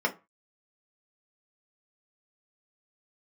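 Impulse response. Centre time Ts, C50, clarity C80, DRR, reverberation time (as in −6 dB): 8 ms, 17.5 dB, 25.0 dB, 0.5 dB, 0.30 s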